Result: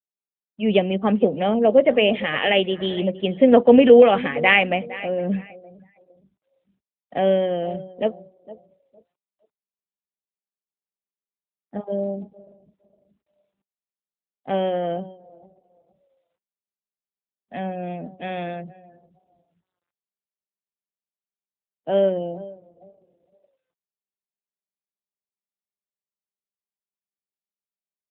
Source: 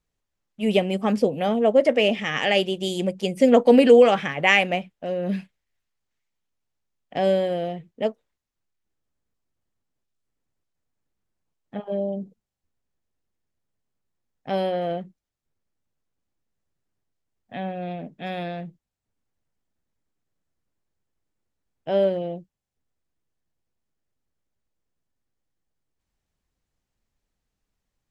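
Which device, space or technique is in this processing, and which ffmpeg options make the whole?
mobile call with aggressive noise cancelling: -filter_complex "[0:a]asplit=3[link_01][link_02][link_03];[link_01]afade=type=out:start_time=18.18:duration=0.02[link_04];[link_02]highpass=150,afade=type=in:start_time=18.18:duration=0.02,afade=type=out:start_time=18.63:duration=0.02[link_05];[link_03]afade=type=in:start_time=18.63:duration=0.02[link_06];[link_04][link_05][link_06]amix=inputs=3:normalize=0,highpass=frequency=150:width=0.5412,highpass=frequency=150:width=1.3066,asplit=2[link_07][link_08];[link_08]adelay=460,lowpass=frequency=4300:poles=1,volume=-17dB,asplit=2[link_09][link_10];[link_10]adelay=460,lowpass=frequency=4300:poles=1,volume=0.31,asplit=2[link_11][link_12];[link_12]adelay=460,lowpass=frequency=4300:poles=1,volume=0.31[link_13];[link_07][link_09][link_11][link_13]amix=inputs=4:normalize=0,afftdn=noise_reduction=35:noise_floor=-47,volume=2.5dB" -ar 8000 -c:a libopencore_amrnb -b:a 12200

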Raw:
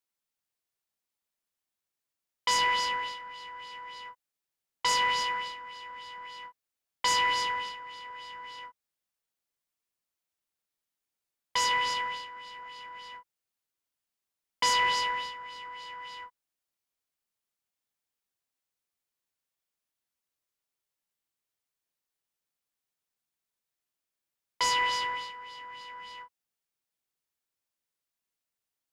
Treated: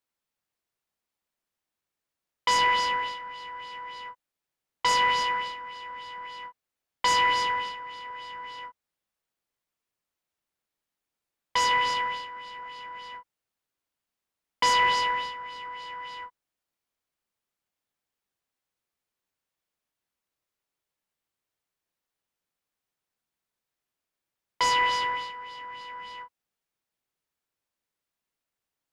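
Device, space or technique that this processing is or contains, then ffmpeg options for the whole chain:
behind a face mask: -af "highshelf=frequency=3400:gain=-7.5,volume=5dB"

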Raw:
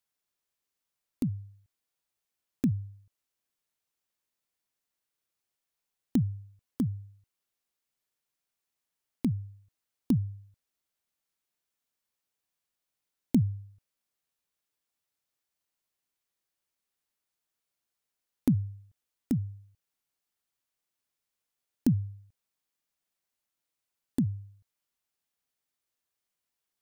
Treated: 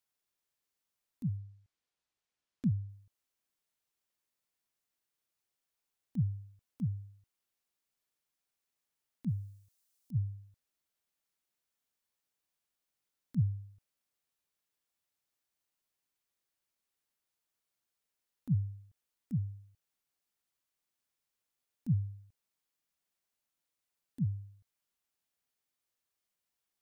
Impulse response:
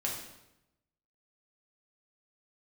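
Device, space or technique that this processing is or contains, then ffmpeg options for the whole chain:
de-esser from a sidechain: -filter_complex "[0:a]asettb=1/sr,asplit=3[link_01][link_02][link_03];[link_01]atrim=end=1.374[link_04];[link_02]atrim=start=1.37:end=2.89,asetpts=PTS-STARTPTS,afade=type=in:duration=0.004:curve=qsin,afade=type=out:start_time=1.516:duration=0.004:curve=qsin,lowpass=6500[link_05];[link_03]atrim=start=2.886[link_06];[link_04][link_05]acrossfade=duration=0.004:curve1=hsin:curve2=qsin[link_07];[link_07][link_06]acrossfade=duration=0.004:curve1=qsin:curve2=hsin,asplit=3[link_08][link_09][link_10];[link_08]afade=type=out:start_time=9.27:duration=0.02[link_11];[link_09]bass=frequency=250:gain=-1,treble=frequency=4000:gain=11,afade=type=in:start_time=9.27:duration=0.02,afade=type=out:start_time=10.14:duration=0.02[link_12];[link_10]afade=type=in:start_time=10.14:duration=0.02[link_13];[link_11][link_12][link_13]amix=inputs=3:normalize=0,asplit=2[link_14][link_15];[link_15]highpass=6500,apad=whole_len=1182425[link_16];[link_14][link_16]sidechaincompress=threshold=-60dB:ratio=5:attack=0.76:release=23,volume=-1.5dB"

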